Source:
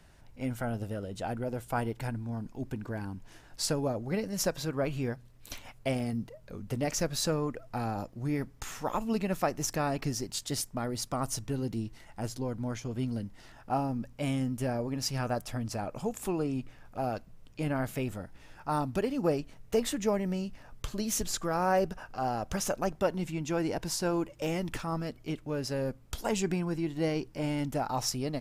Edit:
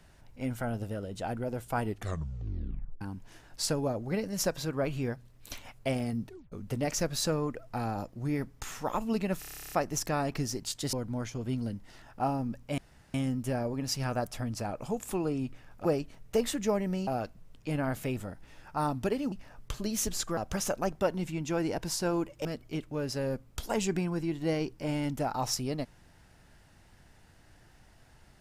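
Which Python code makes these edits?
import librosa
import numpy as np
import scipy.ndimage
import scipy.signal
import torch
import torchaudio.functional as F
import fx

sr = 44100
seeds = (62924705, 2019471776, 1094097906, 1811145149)

y = fx.edit(x, sr, fx.tape_stop(start_s=1.81, length_s=1.2),
    fx.tape_stop(start_s=6.27, length_s=0.25),
    fx.stutter(start_s=9.39, slice_s=0.03, count=12),
    fx.cut(start_s=10.6, length_s=1.83),
    fx.insert_room_tone(at_s=14.28, length_s=0.36),
    fx.move(start_s=19.24, length_s=1.22, to_s=16.99),
    fx.cut(start_s=21.51, length_s=0.86),
    fx.cut(start_s=24.45, length_s=0.55), tone=tone)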